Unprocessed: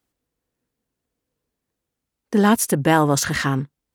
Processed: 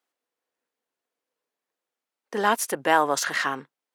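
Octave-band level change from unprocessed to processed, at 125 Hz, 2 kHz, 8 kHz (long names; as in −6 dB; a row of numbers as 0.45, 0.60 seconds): −22.5, −1.0, −6.0 decibels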